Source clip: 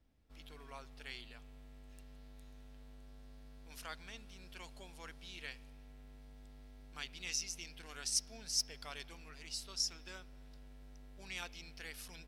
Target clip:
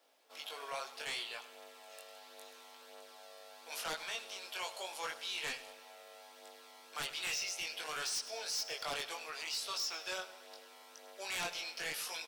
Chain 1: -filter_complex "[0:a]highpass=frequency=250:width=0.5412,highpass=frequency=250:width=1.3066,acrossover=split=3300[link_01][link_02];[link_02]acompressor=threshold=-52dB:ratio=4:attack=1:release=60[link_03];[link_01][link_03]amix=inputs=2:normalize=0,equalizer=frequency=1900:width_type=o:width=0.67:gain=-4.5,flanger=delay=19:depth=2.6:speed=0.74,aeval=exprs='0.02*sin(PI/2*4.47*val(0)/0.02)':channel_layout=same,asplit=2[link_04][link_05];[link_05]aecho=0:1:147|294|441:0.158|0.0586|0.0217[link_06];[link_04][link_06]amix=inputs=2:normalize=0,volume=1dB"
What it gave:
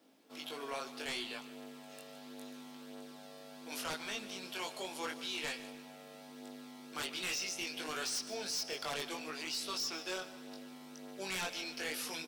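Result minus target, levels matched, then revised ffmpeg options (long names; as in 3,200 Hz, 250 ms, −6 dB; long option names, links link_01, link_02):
250 Hz band +14.5 dB; echo 45 ms late
-filter_complex "[0:a]highpass=frequency=510:width=0.5412,highpass=frequency=510:width=1.3066,acrossover=split=3300[link_01][link_02];[link_02]acompressor=threshold=-52dB:ratio=4:attack=1:release=60[link_03];[link_01][link_03]amix=inputs=2:normalize=0,equalizer=frequency=1900:width_type=o:width=0.67:gain=-4.5,flanger=delay=19:depth=2.6:speed=0.74,aeval=exprs='0.02*sin(PI/2*4.47*val(0)/0.02)':channel_layout=same,asplit=2[link_04][link_05];[link_05]aecho=0:1:102|204|306:0.158|0.0586|0.0217[link_06];[link_04][link_06]amix=inputs=2:normalize=0,volume=1dB"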